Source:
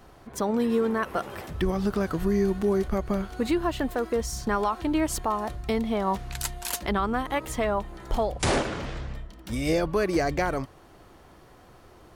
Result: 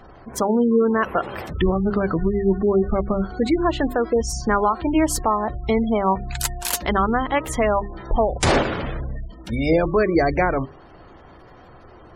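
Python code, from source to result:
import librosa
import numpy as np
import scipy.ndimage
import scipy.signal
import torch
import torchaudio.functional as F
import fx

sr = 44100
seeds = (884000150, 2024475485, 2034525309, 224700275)

y = fx.spec_gate(x, sr, threshold_db=-25, keep='strong')
y = fx.hum_notches(y, sr, base_hz=50, count=8)
y = F.gain(torch.from_numpy(y), 7.0).numpy()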